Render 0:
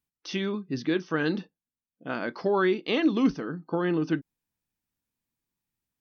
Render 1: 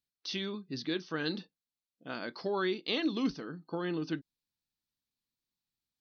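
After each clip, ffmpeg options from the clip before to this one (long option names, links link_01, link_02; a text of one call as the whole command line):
ffmpeg -i in.wav -af "equalizer=frequency=4200:width=1.7:gain=13,volume=-8.5dB" out.wav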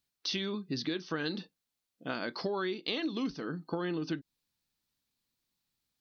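ffmpeg -i in.wav -af "acompressor=threshold=-38dB:ratio=6,volume=7dB" out.wav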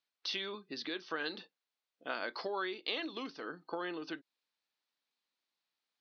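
ffmpeg -i in.wav -af "highpass=490,lowpass=4100" out.wav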